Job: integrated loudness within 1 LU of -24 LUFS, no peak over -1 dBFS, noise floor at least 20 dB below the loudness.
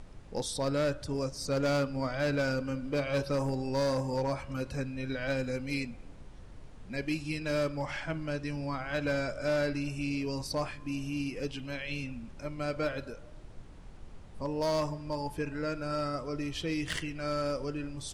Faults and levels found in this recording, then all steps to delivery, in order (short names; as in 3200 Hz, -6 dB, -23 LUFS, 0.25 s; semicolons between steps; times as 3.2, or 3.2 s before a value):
clipped 1.3%; flat tops at -24.5 dBFS; noise floor -49 dBFS; noise floor target -54 dBFS; loudness -33.5 LUFS; peak -24.5 dBFS; loudness target -24.0 LUFS
-> clip repair -24.5 dBFS; noise print and reduce 6 dB; gain +9.5 dB